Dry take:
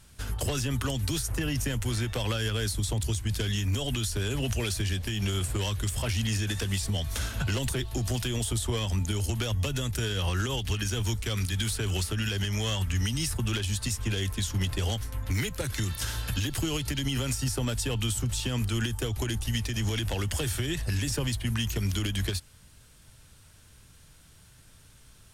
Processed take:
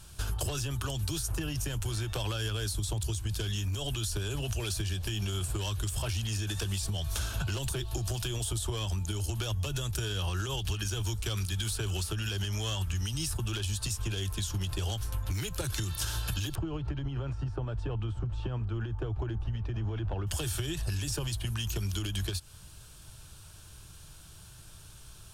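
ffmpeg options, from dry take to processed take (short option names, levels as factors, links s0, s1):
-filter_complex "[0:a]asettb=1/sr,asplit=3[s0][s1][s2];[s0]atrim=end=16.554[s3];[s1]atrim=start=16.55:end=20.27,asetpts=PTS-STARTPTS,afade=t=in:d=0.004:c=qsin,afade=t=out:st=3.716:d=0.004:c=qsin,lowpass=1300[s4];[s2]atrim=start=20.266[s5];[s3][s4]acrossfade=d=0.004:c1=hsin:c2=qsin[s6];[s6][s5]acrossfade=d=0.004:c1=qsin:c2=hsin,equalizer=f=315:t=o:w=0.33:g=4,equalizer=f=500:t=o:w=0.33:g=-5,equalizer=f=2000:t=o:w=0.33:g=-11,acompressor=threshold=0.02:ratio=6,equalizer=f=250:w=3.6:g=-14,volume=1.78"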